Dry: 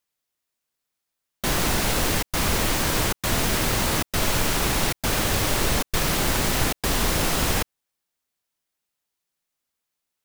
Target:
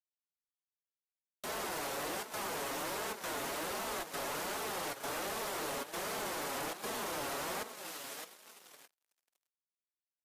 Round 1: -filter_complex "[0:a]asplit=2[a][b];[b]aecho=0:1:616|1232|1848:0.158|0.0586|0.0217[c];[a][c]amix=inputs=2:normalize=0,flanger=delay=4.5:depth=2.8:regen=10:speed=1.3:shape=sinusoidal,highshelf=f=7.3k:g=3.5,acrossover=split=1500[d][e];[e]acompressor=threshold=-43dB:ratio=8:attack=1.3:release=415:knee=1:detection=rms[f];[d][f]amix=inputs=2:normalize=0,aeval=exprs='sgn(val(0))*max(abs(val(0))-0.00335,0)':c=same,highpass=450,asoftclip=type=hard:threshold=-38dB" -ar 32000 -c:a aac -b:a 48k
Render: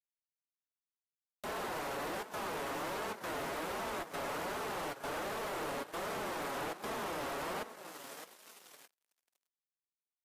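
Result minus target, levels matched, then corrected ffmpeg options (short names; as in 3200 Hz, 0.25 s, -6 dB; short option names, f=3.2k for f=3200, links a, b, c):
compressor: peak gain reduction +9.5 dB
-filter_complex "[0:a]asplit=2[a][b];[b]aecho=0:1:616|1232|1848:0.158|0.0586|0.0217[c];[a][c]amix=inputs=2:normalize=0,flanger=delay=4.5:depth=2.8:regen=10:speed=1.3:shape=sinusoidal,highshelf=f=7.3k:g=3.5,acrossover=split=1500[d][e];[e]acompressor=threshold=-32dB:ratio=8:attack=1.3:release=415:knee=1:detection=rms[f];[d][f]amix=inputs=2:normalize=0,aeval=exprs='sgn(val(0))*max(abs(val(0))-0.00335,0)':c=same,highpass=450,asoftclip=type=hard:threshold=-38dB" -ar 32000 -c:a aac -b:a 48k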